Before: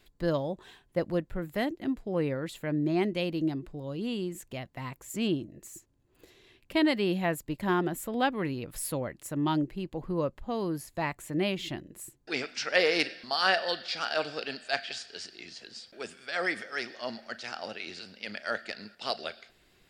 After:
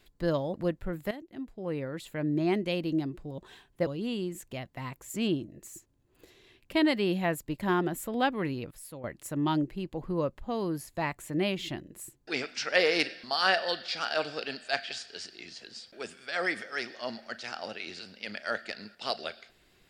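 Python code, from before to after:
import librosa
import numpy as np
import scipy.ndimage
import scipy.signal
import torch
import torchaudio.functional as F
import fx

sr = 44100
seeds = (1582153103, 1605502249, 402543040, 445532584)

y = fx.edit(x, sr, fx.move(start_s=0.54, length_s=0.49, to_s=3.87),
    fx.fade_in_from(start_s=1.6, length_s=1.25, floor_db=-14.5),
    fx.clip_gain(start_s=8.71, length_s=0.33, db=-11.5), tone=tone)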